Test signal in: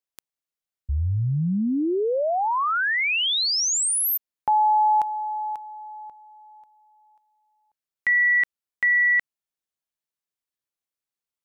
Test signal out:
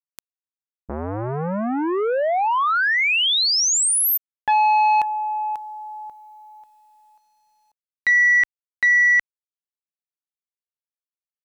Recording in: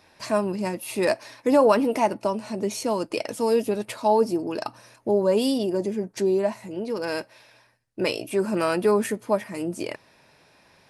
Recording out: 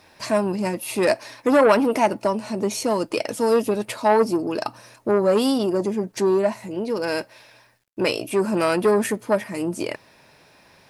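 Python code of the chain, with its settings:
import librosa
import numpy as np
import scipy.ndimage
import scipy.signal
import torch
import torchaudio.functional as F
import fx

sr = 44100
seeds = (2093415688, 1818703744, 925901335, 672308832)

y = fx.quant_dither(x, sr, seeds[0], bits=12, dither='none')
y = fx.transformer_sat(y, sr, knee_hz=920.0)
y = F.gain(torch.from_numpy(y), 4.0).numpy()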